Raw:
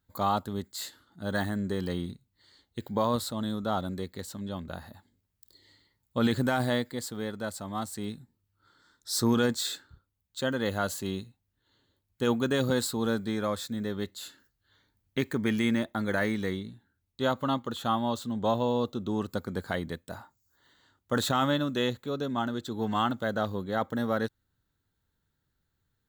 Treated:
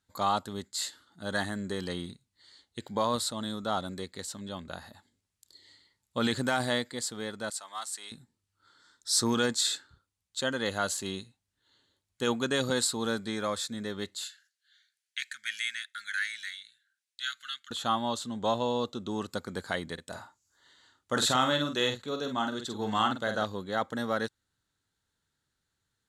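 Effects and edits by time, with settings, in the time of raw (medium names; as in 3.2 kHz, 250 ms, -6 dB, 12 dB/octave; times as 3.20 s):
7.50–8.12 s: high-pass 1 kHz
14.24–17.71 s: elliptic high-pass 1.5 kHz
19.93–23.44 s: doubling 47 ms -6.5 dB
whole clip: low-pass 9.9 kHz 24 dB/octave; tilt EQ +2 dB/octave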